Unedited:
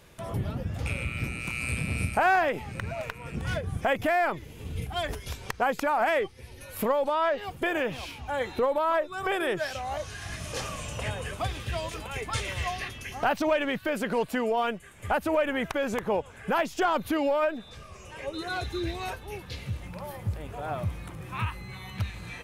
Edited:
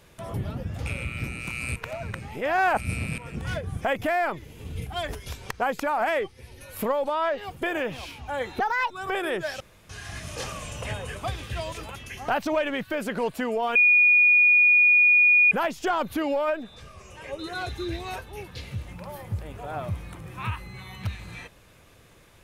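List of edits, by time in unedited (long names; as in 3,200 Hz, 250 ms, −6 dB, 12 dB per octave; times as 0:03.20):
0:01.76–0:03.18: reverse
0:08.60–0:09.07: play speed 155%
0:09.77–0:10.06: fill with room tone
0:12.12–0:12.90: remove
0:14.70–0:16.46: beep over 2,450 Hz −14 dBFS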